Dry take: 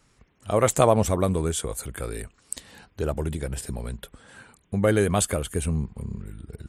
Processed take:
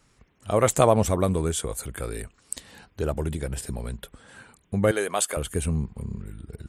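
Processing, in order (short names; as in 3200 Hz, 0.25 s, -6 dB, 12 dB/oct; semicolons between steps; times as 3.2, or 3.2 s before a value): 4.91–5.37 HPF 490 Hz 12 dB/oct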